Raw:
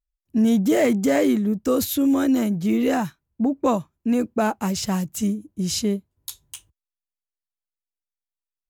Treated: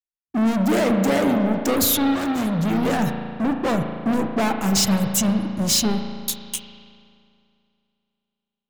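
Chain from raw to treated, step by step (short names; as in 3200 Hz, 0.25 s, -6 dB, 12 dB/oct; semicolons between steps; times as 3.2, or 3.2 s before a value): sample leveller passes 5; limiter -14 dBFS, peak gain reduction 4 dB; reverb removal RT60 0.65 s; spring tank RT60 3.4 s, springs 36 ms, chirp 30 ms, DRR 3.5 dB; three-band expander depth 40%; gain -4 dB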